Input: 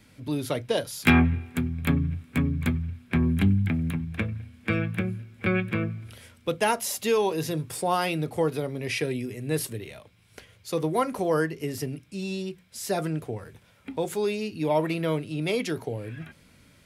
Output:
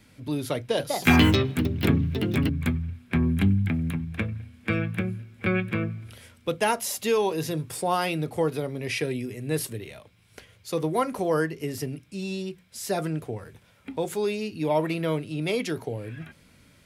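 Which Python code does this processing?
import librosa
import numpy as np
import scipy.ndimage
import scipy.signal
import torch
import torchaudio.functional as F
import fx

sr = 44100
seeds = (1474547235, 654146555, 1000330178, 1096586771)

y = fx.echo_pitch(x, sr, ms=226, semitones=4, count=2, db_per_echo=-3.0, at=(0.57, 2.71))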